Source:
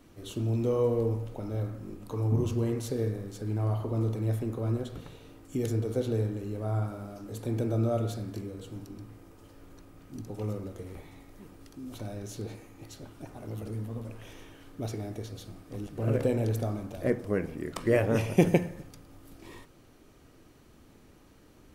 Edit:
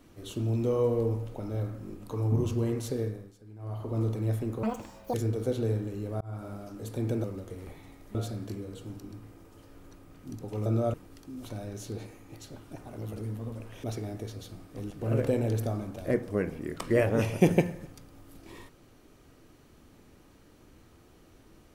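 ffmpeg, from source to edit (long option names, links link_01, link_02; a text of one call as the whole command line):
ffmpeg -i in.wav -filter_complex "[0:a]asplit=11[link_01][link_02][link_03][link_04][link_05][link_06][link_07][link_08][link_09][link_10][link_11];[link_01]atrim=end=3.36,asetpts=PTS-STARTPTS,afade=type=out:start_time=2.94:duration=0.42:silence=0.141254[link_12];[link_02]atrim=start=3.36:end=3.58,asetpts=PTS-STARTPTS,volume=-17dB[link_13];[link_03]atrim=start=3.58:end=4.634,asetpts=PTS-STARTPTS,afade=type=in:duration=0.42:silence=0.141254[link_14];[link_04]atrim=start=4.63:end=5.63,asetpts=PTS-STARTPTS,asetrate=86877,aresample=44100[link_15];[link_05]atrim=start=5.626:end=6.7,asetpts=PTS-STARTPTS,afade=type=out:start_time=1.07:duration=0.004:curve=hsin[link_16];[link_06]atrim=start=6.7:end=7.732,asetpts=PTS-STARTPTS,afade=type=in:duration=0.28[link_17];[link_07]atrim=start=10.518:end=11.432[link_18];[link_08]atrim=start=8.008:end=10.522[link_19];[link_09]atrim=start=7.728:end=8.012[link_20];[link_10]atrim=start=11.428:end=14.332[link_21];[link_11]atrim=start=14.798[link_22];[link_12][link_13][link_14]concat=n=3:v=0:a=1[link_23];[link_23][link_15]acrossfade=duration=0.004:curve1=hsin:curve2=hsin[link_24];[link_16][link_17]concat=n=2:v=0:a=1[link_25];[link_24][link_25]acrossfade=duration=0.004:curve1=hsin:curve2=hsin[link_26];[link_26][link_18]acrossfade=duration=0.004:curve1=hsin:curve2=hsin[link_27];[link_27][link_19]acrossfade=duration=0.004:curve1=hsin:curve2=hsin[link_28];[link_28][link_20]acrossfade=duration=0.004:curve1=hsin:curve2=hsin[link_29];[link_29][link_21]acrossfade=duration=0.004:curve1=hsin:curve2=hsin[link_30];[link_30][link_22]acrossfade=duration=0.004:curve1=hsin:curve2=hsin" out.wav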